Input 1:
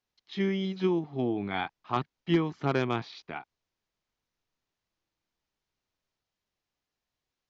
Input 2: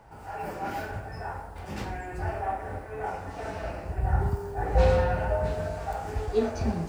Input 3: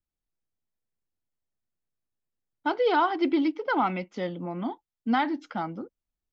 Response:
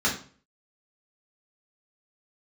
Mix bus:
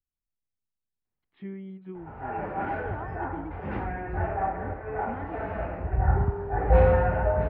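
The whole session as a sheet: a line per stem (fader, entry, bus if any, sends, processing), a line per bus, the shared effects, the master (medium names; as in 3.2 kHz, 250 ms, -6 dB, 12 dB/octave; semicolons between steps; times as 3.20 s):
-8.0 dB, 1.05 s, bus A, no send, auto duck -11 dB, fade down 1.20 s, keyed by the third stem
+2.5 dB, 1.95 s, no bus, no send, none
-12.5 dB, 0.00 s, bus A, no send, none
bus A: 0.0 dB, bass shelf 290 Hz +10.5 dB; compression 1.5:1, threshold -48 dBFS, peak gain reduction 8 dB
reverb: none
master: low-pass 2.2 kHz 24 dB/octave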